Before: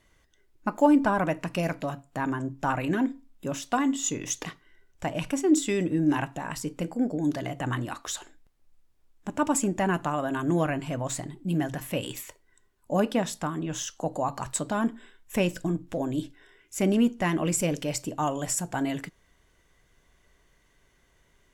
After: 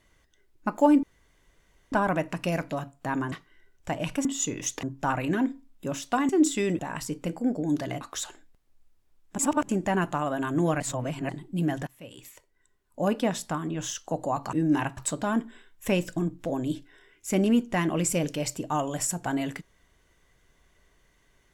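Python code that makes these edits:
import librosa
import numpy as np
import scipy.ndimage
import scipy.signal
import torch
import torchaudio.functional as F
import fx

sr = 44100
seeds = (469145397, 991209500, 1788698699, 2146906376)

y = fx.edit(x, sr, fx.insert_room_tone(at_s=1.03, length_s=0.89),
    fx.swap(start_s=2.43, length_s=1.46, other_s=4.47, other_length_s=0.93),
    fx.move(start_s=5.9, length_s=0.44, to_s=14.45),
    fx.cut(start_s=7.56, length_s=0.37),
    fx.reverse_span(start_s=9.31, length_s=0.3),
    fx.reverse_span(start_s=10.72, length_s=0.49),
    fx.fade_in_from(start_s=11.79, length_s=1.41, floor_db=-23.5), tone=tone)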